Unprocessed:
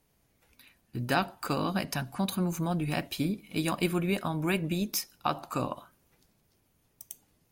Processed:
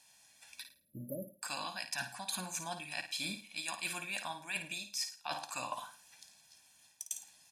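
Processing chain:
meter weighting curve ITU-R 468
time-frequency box erased 0:00.63–0:01.42, 640–11,000 Hz
dynamic equaliser 160 Hz, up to −3 dB, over −54 dBFS, Q 3.1
comb filter 1.2 ms, depth 80%
reversed playback
downward compressor 10 to 1, threshold −38 dBFS, peak gain reduction 23 dB
reversed playback
flutter between parallel walls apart 9.3 metres, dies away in 0.36 s
level +1.5 dB

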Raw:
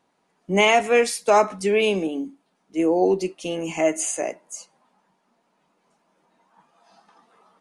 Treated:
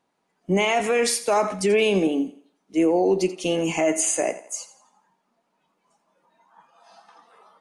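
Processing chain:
noise reduction from a noise print of the clip's start 9 dB
brickwall limiter −17 dBFS, peak gain reduction 10.5 dB
feedback echo with a high-pass in the loop 85 ms, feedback 38%, high-pass 210 Hz, level −15 dB
level +4.5 dB

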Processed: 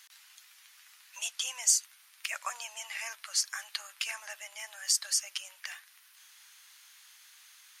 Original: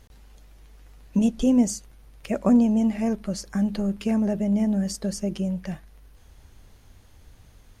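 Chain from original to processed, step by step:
Bessel high-pass filter 1,900 Hz, order 6
level +8.5 dB

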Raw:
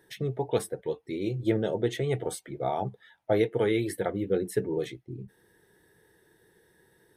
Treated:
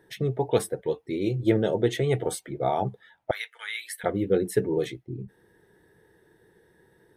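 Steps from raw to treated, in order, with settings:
0:03.31–0:04.04: high-pass filter 1,400 Hz 24 dB per octave
one half of a high-frequency compander decoder only
level +4 dB

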